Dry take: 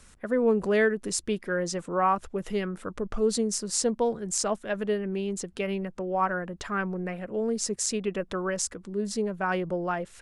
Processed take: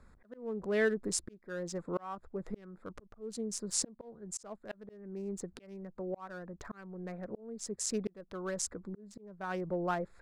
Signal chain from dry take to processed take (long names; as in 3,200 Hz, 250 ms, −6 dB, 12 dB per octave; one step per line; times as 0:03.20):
adaptive Wiener filter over 15 samples
volume swells 681 ms
level −3 dB